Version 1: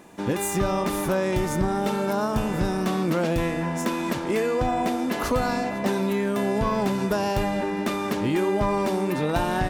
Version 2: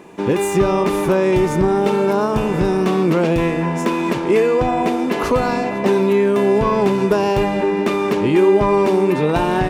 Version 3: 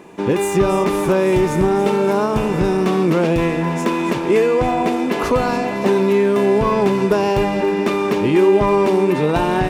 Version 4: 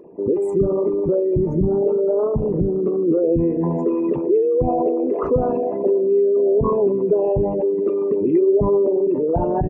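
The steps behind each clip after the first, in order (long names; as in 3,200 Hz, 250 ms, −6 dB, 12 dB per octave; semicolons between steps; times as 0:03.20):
graphic EQ with 15 bands 160 Hz +5 dB, 400 Hz +10 dB, 1,000 Hz +5 dB, 2,500 Hz +6 dB, 16,000 Hz −8 dB; level +2 dB
delay with a high-pass on its return 283 ms, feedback 74%, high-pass 2,100 Hz, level −10.5 dB
spectral envelope exaggerated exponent 3; double-tracking delay 12 ms −13.5 dB; level −2 dB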